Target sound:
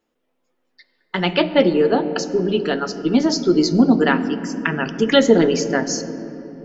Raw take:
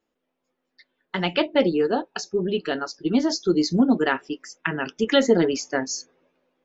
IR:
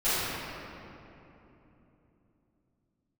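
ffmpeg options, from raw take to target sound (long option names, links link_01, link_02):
-filter_complex "[0:a]asplit=2[link_01][link_02];[1:a]atrim=start_sample=2205,lowshelf=frequency=380:gain=10[link_03];[link_02][link_03]afir=irnorm=-1:irlink=0,volume=-27dB[link_04];[link_01][link_04]amix=inputs=2:normalize=0,volume=4dB"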